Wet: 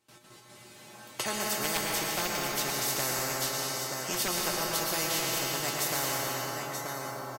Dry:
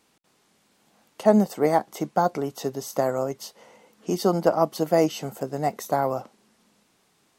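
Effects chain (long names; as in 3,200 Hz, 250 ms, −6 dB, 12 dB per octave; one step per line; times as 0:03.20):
noise gate with hold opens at −54 dBFS
tuned comb filter 120 Hz, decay 0.22 s, harmonics odd, mix 90%
0:01.51–0:04.28: gain into a clipping stage and back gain 25.5 dB
single-tap delay 931 ms −13.5 dB
convolution reverb RT60 2.2 s, pre-delay 103 ms, DRR 0.5 dB
every bin compressed towards the loudest bin 4 to 1
level +3.5 dB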